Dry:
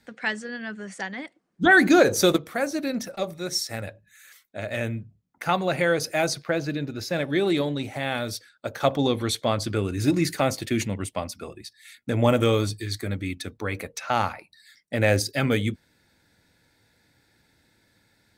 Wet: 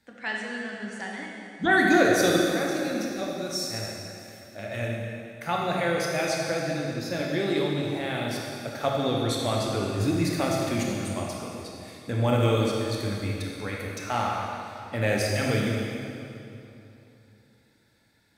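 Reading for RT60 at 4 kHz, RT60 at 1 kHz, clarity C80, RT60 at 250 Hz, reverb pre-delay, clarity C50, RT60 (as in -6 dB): 2.3 s, 2.9 s, 1.0 dB, 3.2 s, 20 ms, -0.5 dB, 2.9 s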